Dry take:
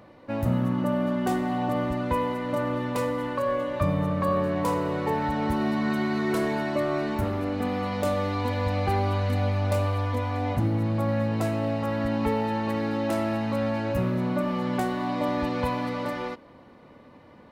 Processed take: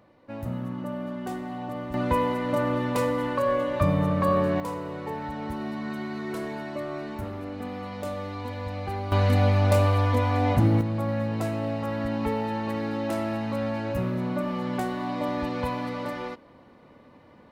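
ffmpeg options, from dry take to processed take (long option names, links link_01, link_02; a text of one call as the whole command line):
ffmpeg -i in.wav -af "asetnsamples=nb_out_samples=441:pad=0,asendcmd='1.94 volume volume 2dB;4.6 volume volume -7dB;9.12 volume volume 4.5dB;10.81 volume volume -2dB',volume=-7.5dB" out.wav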